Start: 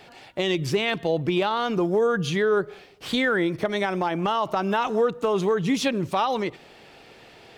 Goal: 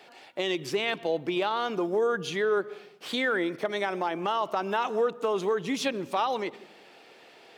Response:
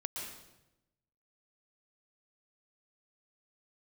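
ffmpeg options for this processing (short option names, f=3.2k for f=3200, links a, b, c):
-filter_complex "[0:a]highpass=300,asplit=2[a][b];[1:a]atrim=start_sample=2205,lowpass=4.8k,lowshelf=f=380:g=11[c];[b][c]afir=irnorm=-1:irlink=0,volume=-21dB[d];[a][d]amix=inputs=2:normalize=0,volume=-4dB"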